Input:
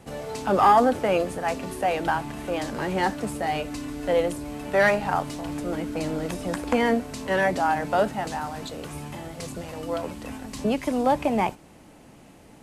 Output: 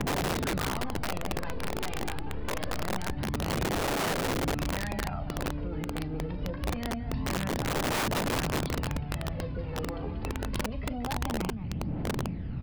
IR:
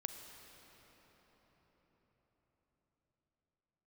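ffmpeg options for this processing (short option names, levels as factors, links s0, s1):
-filter_complex "[0:a]equalizer=f=120:w=1.2:g=3,acrossover=split=200|3000[s0][s1][s2];[s1]acompressor=threshold=0.0398:ratio=10[s3];[s0][s3][s2]amix=inputs=3:normalize=0,bass=f=250:g=14,treble=f=4000:g=-14,acompressor=threshold=0.0316:ratio=12,asplit=3[s4][s5][s6];[s4]afade=t=out:st=0.61:d=0.02[s7];[s5]aeval=exprs='clip(val(0),-1,0.00891)':c=same,afade=t=in:st=0.61:d=0.02,afade=t=out:st=3.16:d=0.02[s8];[s6]afade=t=in:st=3.16:d=0.02[s9];[s7][s8][s9]amix=inputs=3:normalize=0,aresample=11025,aresample=44100,aphaser=in_gain=1:out_gain=1:delay=2.6:decay=0.63:speed=0.25:type=triangular,aecho=1:1:37.9|186.6:0.282|0.398,aeval=exprs='(mod(15.8*val(0)+1,2)-1)/15.8':c=same"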